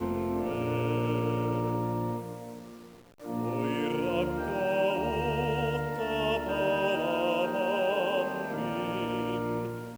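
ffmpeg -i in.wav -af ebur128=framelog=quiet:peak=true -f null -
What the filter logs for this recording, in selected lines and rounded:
Integrated loudness:
  I:         -29.9 LUFS
  Threshold: -40.3 LUFS
Loudness range:
  LRA:         3.5 LU
  Threshold: -50.1 LUFS
  LRA low:   -32.3 LUFS
  LRA high:  -28.8 LUFS
True peak:
  Peak:      -16.0 dBFS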